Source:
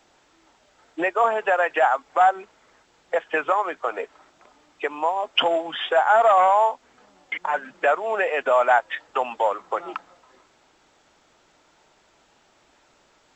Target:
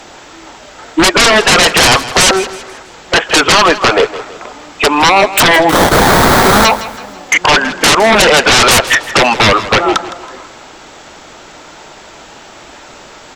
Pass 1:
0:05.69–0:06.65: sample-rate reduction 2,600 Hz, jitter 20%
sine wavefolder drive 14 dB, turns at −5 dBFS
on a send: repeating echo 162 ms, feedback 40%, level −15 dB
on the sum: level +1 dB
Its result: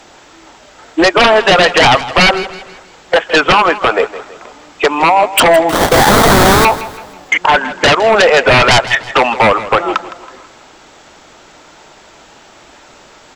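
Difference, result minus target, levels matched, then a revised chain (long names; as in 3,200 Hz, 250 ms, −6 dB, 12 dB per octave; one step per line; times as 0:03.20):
sine wavefolder: distortion −10 dB
0:05.69–0:06.65: sample-rate reduction 2,600 Hz, jitter 20%
sine wavefolder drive 20 dB, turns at −5 dBFS
on a send: repeating echo 162 ms, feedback 40%, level −15 dB
on the sum: level +1 dB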